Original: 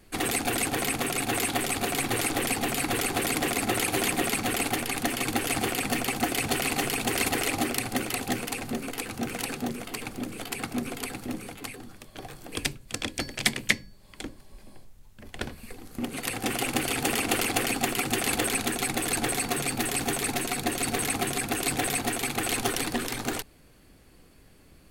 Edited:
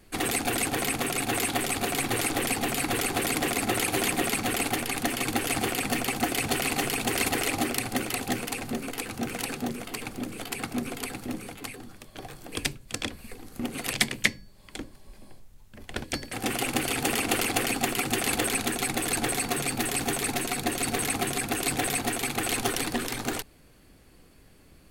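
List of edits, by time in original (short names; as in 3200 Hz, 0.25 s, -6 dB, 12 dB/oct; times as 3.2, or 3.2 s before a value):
13.1–13.38 swap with 15.49–16.32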